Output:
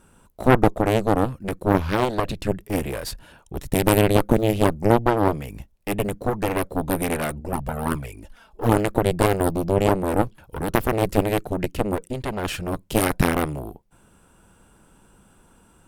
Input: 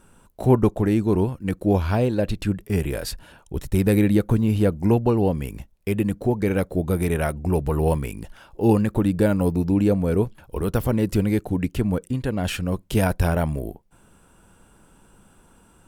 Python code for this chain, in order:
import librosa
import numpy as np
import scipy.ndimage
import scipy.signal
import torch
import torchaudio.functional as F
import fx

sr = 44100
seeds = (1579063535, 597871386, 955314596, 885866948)

y = fx.cheby_harmonics(x, sr, harmonics=(3, 4, 7), levels_db=(-17, -6, -12), full_scale_db=-4.0)
y = fx.env_flanger(y, sr, rest_ms=5.3, full_db=-11.5, at=(7.4, 8.72))
y = y * librosa.db_to_amplitude(-2.0)